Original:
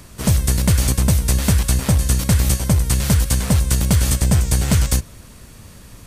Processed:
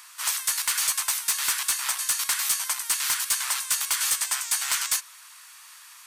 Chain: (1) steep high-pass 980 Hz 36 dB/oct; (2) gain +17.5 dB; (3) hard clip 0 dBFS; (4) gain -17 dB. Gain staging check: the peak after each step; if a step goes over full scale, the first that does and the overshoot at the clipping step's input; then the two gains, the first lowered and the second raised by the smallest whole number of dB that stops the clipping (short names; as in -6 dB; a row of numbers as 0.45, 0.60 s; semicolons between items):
-9.0, +8.5, 0.0, -17.0 dBFS; step 2, 8.5 dB; step 2 +8.5 dB, step 4 -8 dB